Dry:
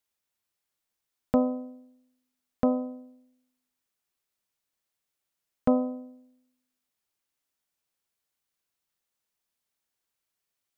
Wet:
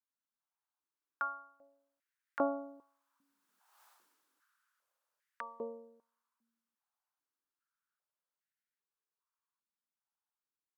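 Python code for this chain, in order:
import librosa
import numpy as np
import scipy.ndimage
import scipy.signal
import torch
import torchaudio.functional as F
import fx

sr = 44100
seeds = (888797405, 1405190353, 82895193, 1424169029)

y = fx.doppler_pass(x, sr, speed_mps=33, closest_m=2.8, pass_at_s=3.85)
y = fx.band_shelf(y, sr, hz=1200.0, db=9.5, octaves=1.1)
y = fx.filter_held_highpass(y, sr, hz=2.5, low_hz=220.0, high_hz=1900.0)
y = F.gain(torch.from_numpy(y), 16.5).numpy()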